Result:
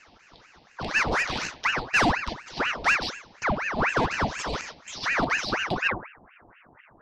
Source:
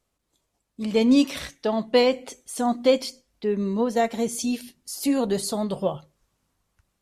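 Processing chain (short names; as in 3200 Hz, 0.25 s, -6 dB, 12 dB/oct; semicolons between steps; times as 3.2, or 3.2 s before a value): per-bin compression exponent 0.6; steep low-pass 5200 Hz 72 dB/oct, from 5.87 s 1300 Hz; soft clip -16 dBFS, distortion -13 dB; fixed phaser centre 480 Hz, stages 4; ring modulator with a swept carrier 1200 Hz, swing 85%, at 4.1 Hz; gain +3 dB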